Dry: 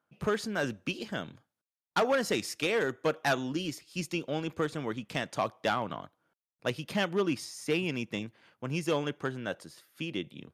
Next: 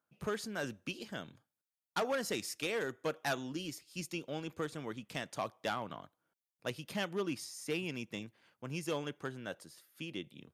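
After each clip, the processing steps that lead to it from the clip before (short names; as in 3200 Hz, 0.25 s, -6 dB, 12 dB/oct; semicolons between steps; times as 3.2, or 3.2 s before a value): high shelf 6500 Hz +8 dB; gain -7.5 dB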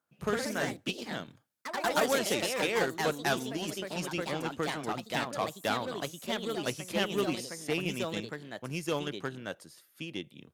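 echoes that change speed 88 ms, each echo +2 st, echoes 3; added harmonics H 7 -27 dB, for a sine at -20.5 dBFS; gain +5.5 dB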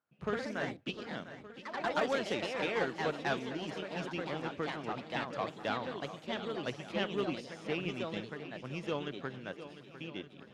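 LPF 3600 Hz 12 dB/oct; swung echo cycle 1.169 s, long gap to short 1.5:1, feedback 40%, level -13 dB; gain -4 dB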